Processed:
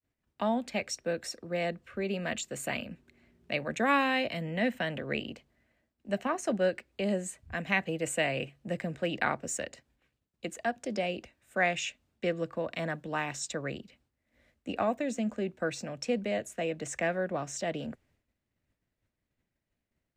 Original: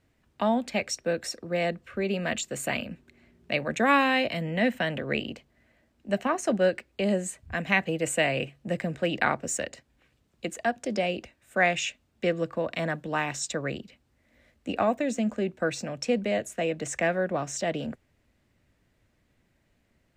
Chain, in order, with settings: expander -60 dBFS; trim -4.5 dB

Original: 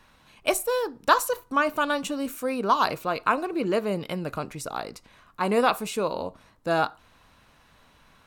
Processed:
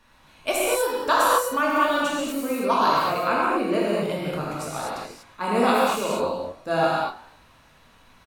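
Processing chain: frequency-shifting echo 102 ms, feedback 49%, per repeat +42 Hz, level -19 dB; gated-style reverb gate 270 ms flat, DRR -6.5 dB; trim -4 dB

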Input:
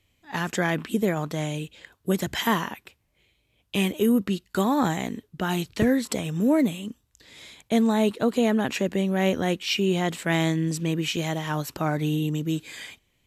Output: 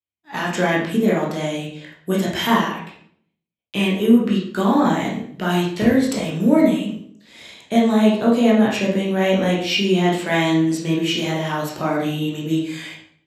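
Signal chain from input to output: high-pass 120 Hz 12 dB/octave; expander -50 dBFS; 2.72–4.97 s: treble shelf 7.5 kHz -6.5 dB; reverberation RT60 0.60 s, pre-delay 12 ms, DRR -4.5 dB

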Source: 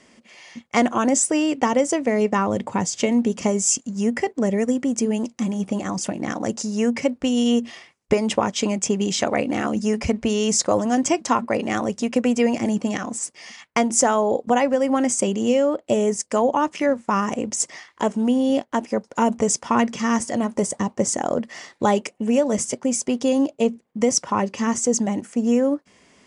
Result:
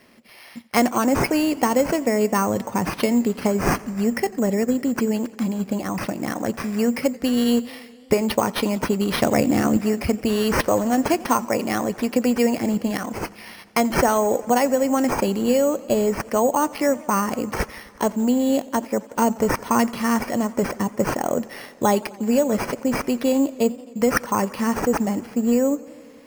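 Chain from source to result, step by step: 9.13–9.77 s: bass shelf 250 Hz +11.5 dB; careless resampling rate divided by 6×, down none, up hold; modulated delay 88 ms, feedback 78%, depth 102 cents, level -22 dB

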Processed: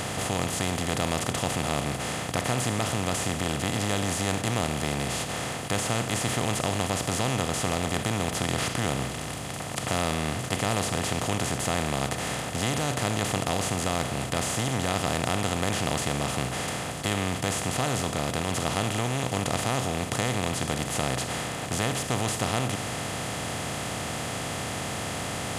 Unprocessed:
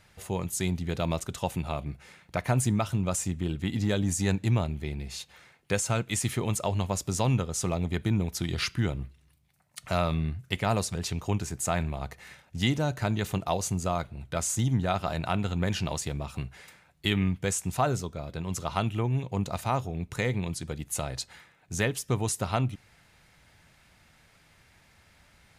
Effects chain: spectral levelling over time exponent 0.2; trim -8.5 dB

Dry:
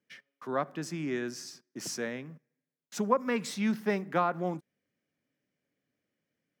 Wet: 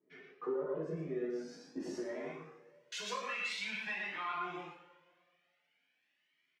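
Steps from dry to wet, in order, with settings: delay 118 ms -5 dB; band-pass sweep 430 Hz -> 2.8 kHz, 2.00–2.89 s; 1.05–3.60 s: treble shelf 2.2 kHz +10.5 dB; peak limiter -36 dBFS, peak gain reduction 11.5 dB; compression 2.5:1, threshold -56 dBFS, peak gain reduction 11 dB; treble shelf 5.2 kHz -9.5 dB; two-slope reverb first 0.5 s, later 1.8 s, from -16 dB, DRR -5.5 dB; Shepard-style flanger rising 0.47 Hz; trim +14.5 dB

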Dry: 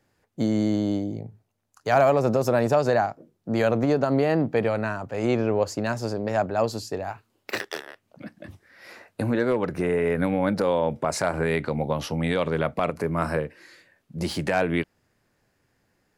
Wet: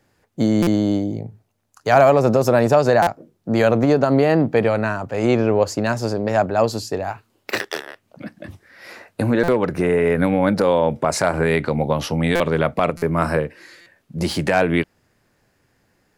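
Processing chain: buffer glitch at 0.62/3.02/9.43/12.35/12.97/13.81 s, samples 256, times 8; trim +6 dB

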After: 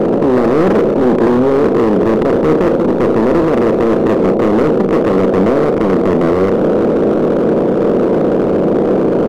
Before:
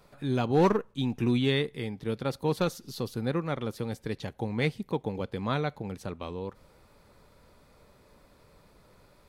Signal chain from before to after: spectral levelling over time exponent 0.2; FFT filter 120 Hz 0 dB, 210 Hz +12 dB, 650 Hz +10 dB, 1.4 kHz -27 dB; in parallel at +1 dB: peak limiter -19 dBFS, peak gain reduction 22 dB; on the sum: feedback comb 330 Hz, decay 0.23 s, harmonics all, mix 60%; on a send: band-passed feedback delay 518 ms, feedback 63%, band-pass 700 Hz, level -11.5 dB; on the sum: overload inside the chain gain 16 dB; doubling 32 ms -9.5 dB; trim +7.5 dB

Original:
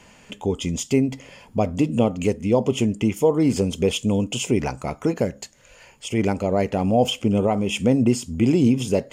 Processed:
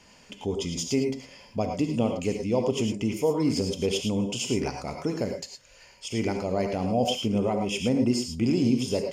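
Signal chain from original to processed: peaking EQ 5 kHz +10.5 dB 0.48 oct; band-stop 7.9 kHz, Q 24; gated-style reverb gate 130 ms rising, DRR 4 dB; trim -7 dB

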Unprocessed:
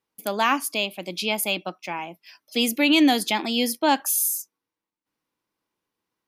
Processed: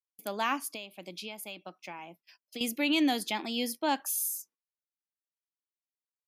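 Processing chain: gate -47 dBFS, range -23 dB; 0.74–2.61 s: compression 12:1, threshold -29 dBFS, peak gain reduction 11 dB; trim -9 dB

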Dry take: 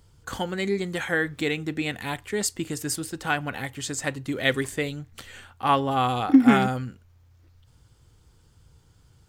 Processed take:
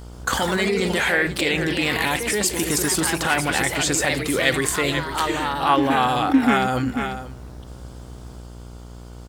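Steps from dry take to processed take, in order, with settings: mains buzz 60 Hz, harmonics 25, -43 dBFS -9 dB/octave; bass shelf 270 Hz -10 dB; delay 491 ms -18 dB; in parallel at +3 dB: compressor with a negative ratio -35 dBFS, ratio -1; on the sum: ever faster or slower copies 129 ms, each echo +2 st, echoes 3, each echo -6 dB; trim +2.5 dB

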